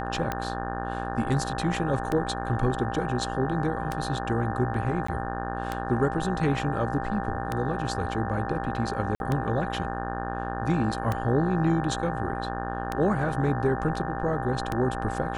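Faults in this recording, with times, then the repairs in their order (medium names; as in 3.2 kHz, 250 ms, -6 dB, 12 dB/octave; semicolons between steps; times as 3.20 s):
buzz 60 Hz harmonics 30 -33 dBFS
tick 33 1/3 rpm -14 dBFS
whine 790 Hz -34 dBFS
5.07–5.08 s: dropout 14 ms
9.15–9.20 s: dropout 51 ms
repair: de-click; band-stop 790 Hz, Q 30; de-hum 60 Hz, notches 30; interpolate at 5.07 s, 14 ms; interpolate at 9.15 s, 51 ms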